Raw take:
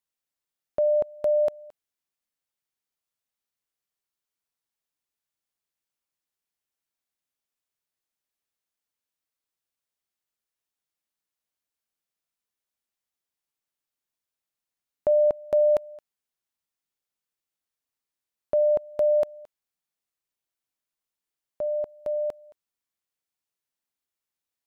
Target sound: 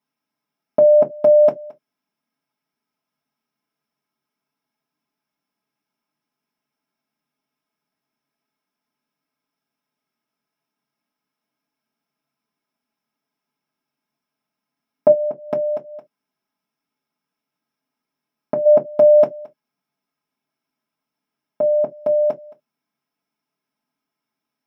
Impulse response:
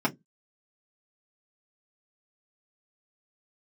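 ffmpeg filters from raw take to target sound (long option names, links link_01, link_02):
-filter_complex "[0:a]asplit=3[link_01][link_02][link_03];[link_01]afade=type=out:start_time=15.11:duration=0.02[link_04];[link_02]acompressor=threshold=-31dB:ratio=8,afade=type=in:start_time=15.11:duration=0.02,afade=type=out:start_time=18.65:duration=0.02[link_05];[link_03]afade=type=in:start_time=18.65:duration=0.02[link_06];[link_04][link_05][link_06]amix=inputs=3:normalize=0[link_07];[1:a]atrim=start_sample=2205,afade=type=out:start_time=0.13:duration=0.01,atrim=end_sample=6174[link_08];[link_07][link_08]afir=irnorm=-1:irlink=0"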